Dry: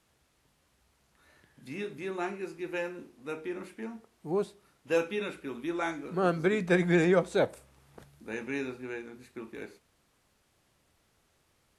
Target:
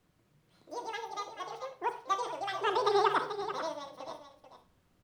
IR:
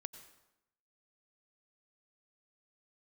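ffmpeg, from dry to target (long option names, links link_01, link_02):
-filter_complex "[0:a]lowshelf=frequency=61:gain=11[link_01];[1:a]atrim=start_sample=2205[link_02];[link_01][link_02]afir=irnorm=-1:irlink=0,acrossover=split=3200[link_03][link_04];[link_04]acompressor=threshold=-59dB:ratio=4:attack=1:release=60[link_05];[link_03][link_05]amix=inputs=2:normalize=0,tiltshelf=frequency=1100:gain=4.5,bandreject=frequency=360:width=12,aecho=1:1:1022:0.299,asetrate=103194,aresample=44100,volume=-1dB"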